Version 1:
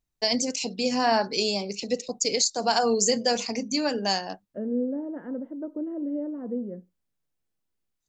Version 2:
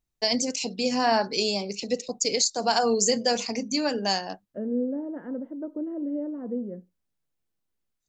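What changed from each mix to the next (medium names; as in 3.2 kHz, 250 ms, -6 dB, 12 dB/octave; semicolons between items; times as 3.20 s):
no change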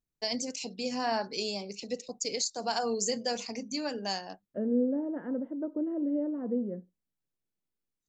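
first voice -8.0 dB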